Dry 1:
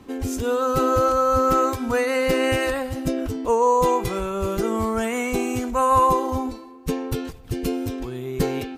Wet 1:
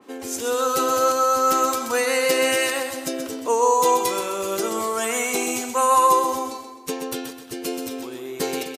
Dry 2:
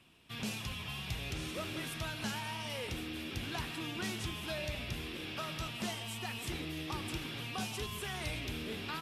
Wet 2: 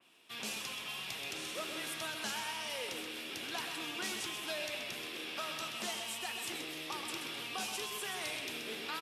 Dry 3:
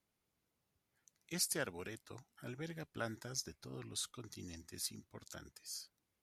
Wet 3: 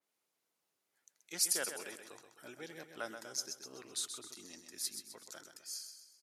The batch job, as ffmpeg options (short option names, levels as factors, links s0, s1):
-af "highpass=360,equalizer=f=8300:w=0.65:g=3.5,aecho=1:1:129|258|387|516|645:0.398|0.179|0.0806|0.0363|0.0163,adynamicequalizer=threshold=0.0126:dfrequency=2800:dqfactor=0.7:tfrequency=2800:tqfactor=0.7:attack=5:release=100:ratio=0.375:range=3.5:mode=boostabove:tftype=highshelf"